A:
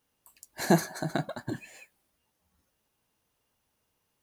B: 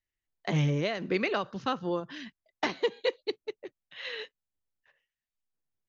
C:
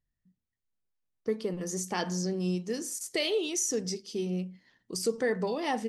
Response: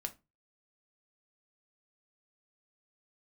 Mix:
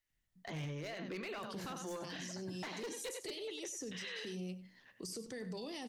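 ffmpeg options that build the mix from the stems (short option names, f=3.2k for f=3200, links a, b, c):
-filter_complex "[0:a]acompressor=threshold=-34dB:ratio=6,adelay=1000,volume=-11.5dB[a];[1:a]alimiter=limit=-19.5dB:level=0:latency=1:release=118,lowshelf=f=500:g=-6.5,volume=1.5dB,asplit=3[b][c][d];[c]volume=-11.5dB[e];[d]volume=-14dB[f];[2:a]acrossover=split=160|490|2900[g][h][i][j];[g]acompressor=threshold=-48dB:ratio=4[k];[h]acompressor=threshold=-45dB:ratio=4[l];[i]acompressor=threshold=-54dB:ratio=4[m];[j]acompressor=threshold=-38dB:ratio=4[n];[k][l][m][n]amix=inputs=4:normalize=0,adelay=100,volume=-0.5dB,asplit=2[o][p];[p]volume=-18dB[q];[b][o]amix=inputs=2:normalize=0,aeval=exprs='0.0473*(abs(mod(val(0)/0.0473+3,4)-2)-1)':c=same,alimiter=level_in=11.5dB:limit=-24dB:level=0:latency=1:release=18,volume=-11.5dB,volume=0dB[r];[3:a]atrim=start_sample=2205[s];[e][s]afir=irnorm=-1:irlink=0[t];[f][q]amix=inputs=2:normalize=0,aecho=0:1:96:1[u];[a][r][t][u]amix=inputs=4:normalize=0,alimiter=level_in=12dB:limit=-24dB:level=0:latency=1:release=31,volume=-12dB"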